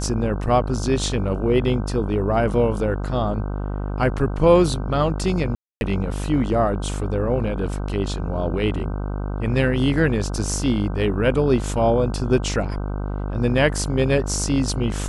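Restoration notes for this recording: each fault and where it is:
mains buzz 50 Hz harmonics 31 −26 dBFS
0:05.55–0:05.81: drop-out 261 ms

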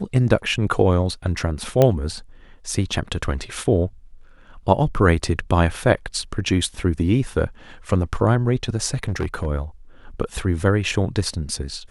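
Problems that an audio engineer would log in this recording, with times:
0:01.82: click −4 dBFS
0:08.94–0:09.47: clipping −18.5 dBFS

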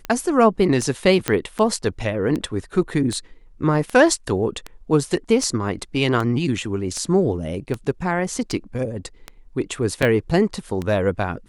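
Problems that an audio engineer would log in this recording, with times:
scratch tick 78 rpm −13 dBFS
0:01.28: click −4 dBFS
0:10.02–0:10.03: drop-out 5 ms

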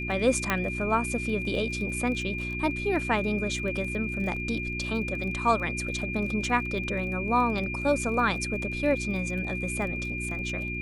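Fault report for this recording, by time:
surface crackle 24 per second −35 dBFS
mains hum 60 Hz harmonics 6 −35 dBFS
whistle 2,400 Hz −33 dBFS
0:00.50: click −10 dBFS

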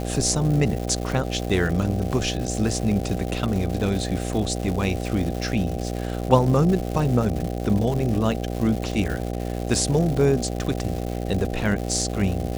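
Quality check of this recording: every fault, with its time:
mains buzz 60 Hz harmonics 13 −28 dBFS
surface crackle 300 per second −28 dBFS

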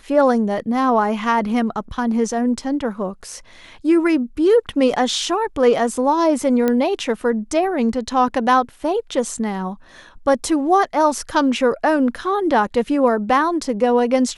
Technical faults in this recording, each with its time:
0:06.68: click −7 dBFS

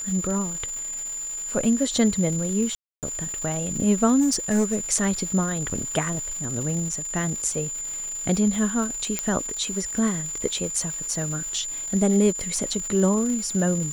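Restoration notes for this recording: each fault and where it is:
surface crackle 380 per second −32 dBFS
whistle 7,100 Hz −29 dBFS
0:02.75–0:03.03: drop-out 278 ms
0:04.20–0:04.77: clipping −16.5 dBFS
0:05.70–0:05.71: drop-out 5.2 ms
0:09.19: click −9 dBFS

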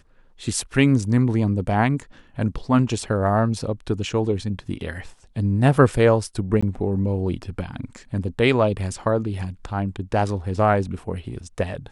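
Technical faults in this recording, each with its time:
0:06.61–0:06.62: drop-out 15 ms

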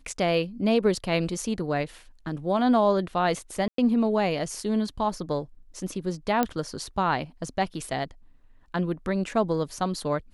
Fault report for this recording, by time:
0:03.68–0:03.78: drop-out 103 ms
0:06.43: click −10 dBFS

